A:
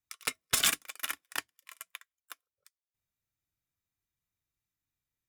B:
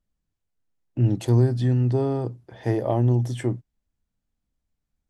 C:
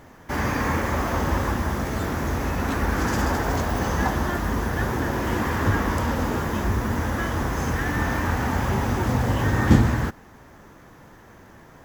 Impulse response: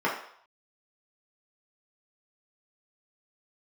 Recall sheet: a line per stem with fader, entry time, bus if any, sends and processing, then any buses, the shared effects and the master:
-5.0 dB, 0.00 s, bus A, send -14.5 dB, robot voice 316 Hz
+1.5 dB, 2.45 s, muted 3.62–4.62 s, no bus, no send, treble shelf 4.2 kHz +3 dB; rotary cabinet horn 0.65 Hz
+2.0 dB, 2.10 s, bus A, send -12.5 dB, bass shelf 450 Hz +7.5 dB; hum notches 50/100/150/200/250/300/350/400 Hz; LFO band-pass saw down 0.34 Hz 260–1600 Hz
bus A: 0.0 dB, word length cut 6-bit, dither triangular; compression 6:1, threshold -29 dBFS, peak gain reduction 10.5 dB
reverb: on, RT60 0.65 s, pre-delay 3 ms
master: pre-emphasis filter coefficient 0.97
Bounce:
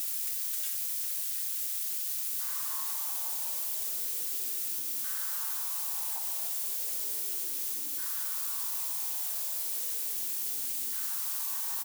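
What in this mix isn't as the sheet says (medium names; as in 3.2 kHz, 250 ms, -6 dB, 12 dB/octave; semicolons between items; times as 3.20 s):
stem A -5.0 dB -> -12.5 dB; stem B: muted; stem C +2.0 dB -> -9.0 dB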